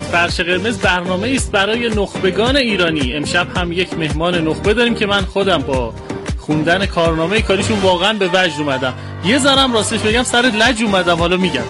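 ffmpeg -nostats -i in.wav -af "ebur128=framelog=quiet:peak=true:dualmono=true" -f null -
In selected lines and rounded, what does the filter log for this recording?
Integrated loudness:
  I:         -11.9 LUFS
  Threshold: -21.9 LUFS
Loudness range:
  LRA:         2.6 LU
  Threshold: -32.2 LUFS
  LRA low:   -13.3 LUFS
  LRA high:  -10.7 LUFS
True peak:
  Peak:       -4.2 dBFS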